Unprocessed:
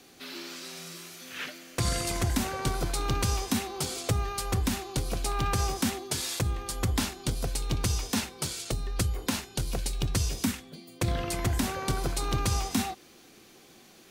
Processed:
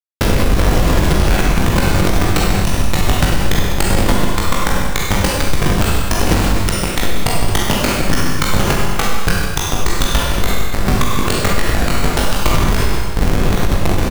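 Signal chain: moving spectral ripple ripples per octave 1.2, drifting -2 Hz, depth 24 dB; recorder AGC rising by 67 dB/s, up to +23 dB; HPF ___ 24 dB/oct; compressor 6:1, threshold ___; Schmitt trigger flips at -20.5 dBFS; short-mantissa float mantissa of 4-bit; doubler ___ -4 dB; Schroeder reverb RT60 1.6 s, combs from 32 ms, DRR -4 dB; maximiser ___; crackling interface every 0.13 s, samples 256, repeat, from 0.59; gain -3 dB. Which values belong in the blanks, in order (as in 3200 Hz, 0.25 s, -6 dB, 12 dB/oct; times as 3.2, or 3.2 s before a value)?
980 Hz, -26 dBFS, 20 ms, +22.5 dB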